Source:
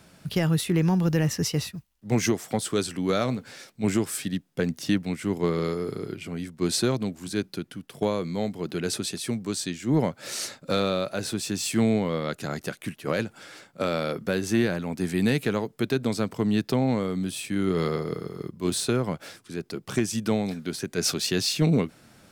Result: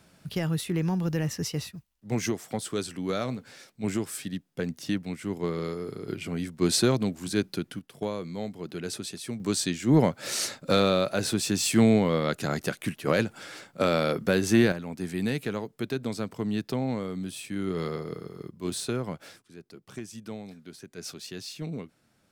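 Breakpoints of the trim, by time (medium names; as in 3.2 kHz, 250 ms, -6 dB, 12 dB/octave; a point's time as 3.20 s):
-5 dB
from 6.08 s +1.5 dB
from 7.79 s -6 dB
from 9.40 s +2.5 dB
from 14.72 s -5.5 dB
from 19.42 s -14 dB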